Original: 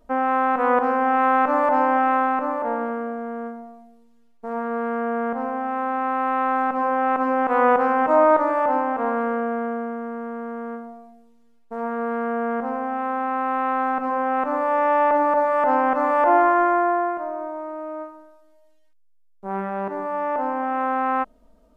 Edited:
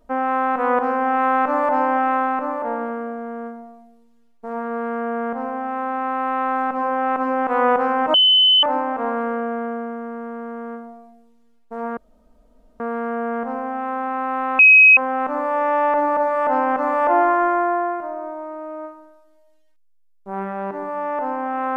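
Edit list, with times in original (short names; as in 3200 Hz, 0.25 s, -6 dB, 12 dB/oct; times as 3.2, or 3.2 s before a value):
8.14–8.63 bleep 3030 Hz -10.5 dBFS
11.97 insert room tone 0.83 s
13.76–14.14 bleep 2540 Hz -6 dBFS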